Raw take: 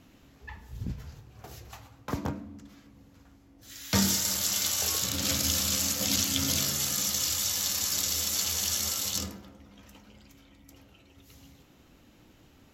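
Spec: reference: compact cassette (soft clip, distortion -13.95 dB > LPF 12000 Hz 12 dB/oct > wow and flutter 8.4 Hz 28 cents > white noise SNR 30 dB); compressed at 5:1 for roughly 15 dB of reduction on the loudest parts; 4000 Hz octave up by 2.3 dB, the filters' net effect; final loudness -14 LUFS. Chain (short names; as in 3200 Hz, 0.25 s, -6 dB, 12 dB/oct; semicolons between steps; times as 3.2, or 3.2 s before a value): bell 4000 Hz +3 dB; compressor 5:1, threshold -37 dBFS; soft clip -34.5 dBFS; LPF 12000 Hz 12 dB/oct; wow and flutter 8.4 Hz 28 cents; white noise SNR 30 dB; gain +26.5 dB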